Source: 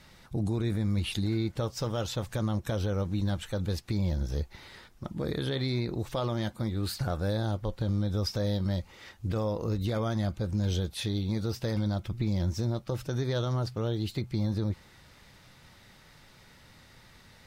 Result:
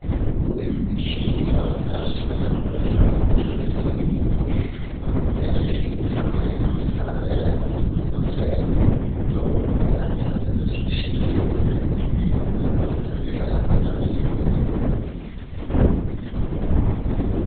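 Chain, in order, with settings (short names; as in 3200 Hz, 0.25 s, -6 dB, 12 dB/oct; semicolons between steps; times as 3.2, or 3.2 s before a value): wind noise 370 Hz -29 dBFS; bell 1000 Hz -6.5 dB 1.8 oct; comb 5.8 ms, depth 42%; compressor 5:1, threshold -33 dBFS, peak gain reduction 17.5 dB; grains, pitch spread up and down by 3 st; echo 0.283 s -14 dB; shoebox room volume 720 m³, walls furnished, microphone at 7.1 m; LPC vocoder at 8 kHz whisper; gain +2.5 dB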